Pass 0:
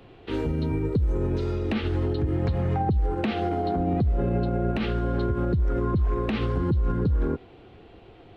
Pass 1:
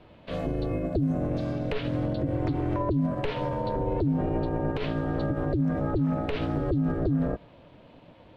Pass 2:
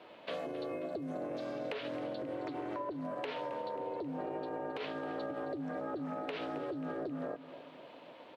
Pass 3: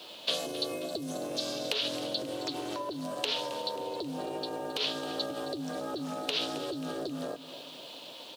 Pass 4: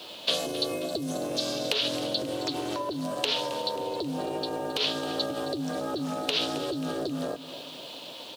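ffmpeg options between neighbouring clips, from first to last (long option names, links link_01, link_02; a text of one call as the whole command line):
ffmpeg -i in.wav -af "aeval=exprs='val(0)*sin(2*PI*210*n/s)':channel_layout=same" out.wav
ffmpeg -i in.wav -af "highpass=420,acompressor=threshold=-39dB:ratio=6,aecho=1:1:268|536|804|1072|1340:0.178|0.0942|0.05|0.0265|0.014,volume=2.5dB" out.wav
ffmpeg -i in.wav -af "aexciter=amount=11.2:drive=5.2:freq=3100,volume=2.5dB" out.wav
ffmpeg -i in.wav -af "lowshelf=frequency=120:gain=6.5,volume=4dB" out.wav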